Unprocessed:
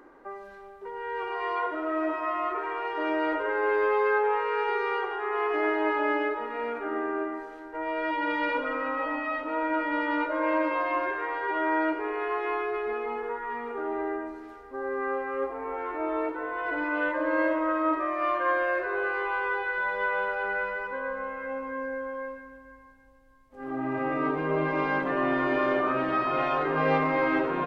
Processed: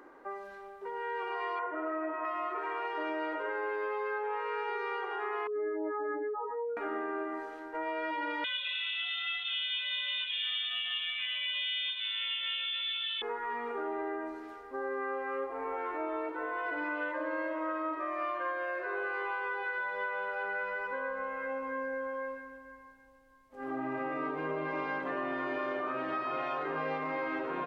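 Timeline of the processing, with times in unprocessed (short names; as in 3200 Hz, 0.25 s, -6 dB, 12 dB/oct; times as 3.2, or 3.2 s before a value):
1.59–2.25 LPF 2300 Hz 24 dB/oct
5.47–6.77 spectral contrast raised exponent 3.7
8.44–13.22 inverted band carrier 3900 Hz
whole clip: low shelf 180 Hz -10 dB; compressor, threshold -32 dBFS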